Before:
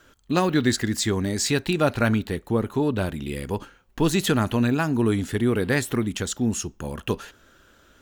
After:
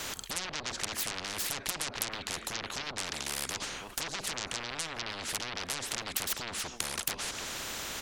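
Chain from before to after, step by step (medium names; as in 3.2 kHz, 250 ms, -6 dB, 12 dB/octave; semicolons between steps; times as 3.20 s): low-pass that closes with the level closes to 740 Hz, closed at -16.5 dBFS; speakerphone echo 310 ms, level -28 dB; in parallel at -6 dB: sine folder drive 19 dB, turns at -9 dBFS; on the sum: spectrum-flattening compressor 10:1; trim -4.5 dB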